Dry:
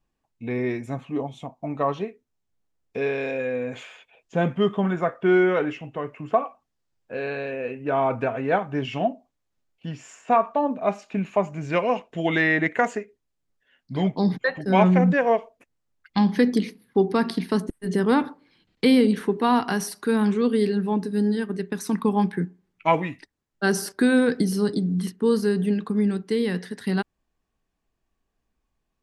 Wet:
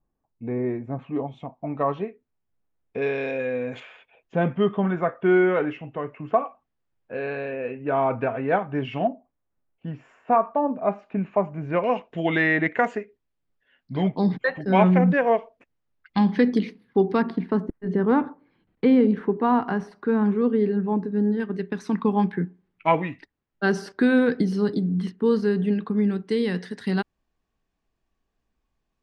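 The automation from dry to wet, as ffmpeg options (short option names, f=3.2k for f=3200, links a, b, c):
-af "asetnsamples=n=441:p=0,asendcmd='0.99 lowpass f 2400;3.02 lowpass f 5000;3.8 lowpass f 2700;9.07 lowpass f 1600;11.84 lowpass f 3500;17.22 lowpass f 1500;21.4 lowpass f 3400;26.29 lowpass f 6500',lowpass=1.1k"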